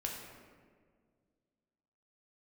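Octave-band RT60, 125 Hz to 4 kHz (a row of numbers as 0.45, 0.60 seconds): 2.4, 2.4, 2.1, 1.6, 1.4, 0.95 seconds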